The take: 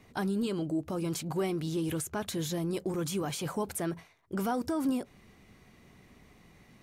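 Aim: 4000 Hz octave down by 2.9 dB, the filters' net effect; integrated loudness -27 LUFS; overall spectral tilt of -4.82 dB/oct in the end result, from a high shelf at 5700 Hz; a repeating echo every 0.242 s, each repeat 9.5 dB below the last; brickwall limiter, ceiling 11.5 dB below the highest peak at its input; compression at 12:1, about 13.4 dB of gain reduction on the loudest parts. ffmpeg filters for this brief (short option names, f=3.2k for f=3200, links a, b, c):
-af "equalizer=f=4k:t=o:g=-7.5,highshelf=f=5.7k:g=9,acompressor=threshold=-40dB:ratio=12,alimiter=level_in=16dB:limit=-24dB:level=0:latency=1,volume=-16dB,aecho=1:1:242|484|726|968:0.335|0.111|0.0365|0.012,volume=21.5dB"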